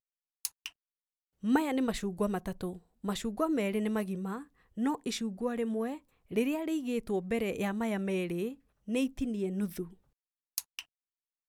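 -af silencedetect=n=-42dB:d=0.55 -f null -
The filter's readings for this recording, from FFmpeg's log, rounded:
silence_start: 0.68
silence_end: 1.43 | silence_duration: 0.75
silence_start: 9.88
silence_end: 10.58 | silence_duration: 0.70
silence_start: 10.81
silence_end: 11.49 | silence_duration: 0.67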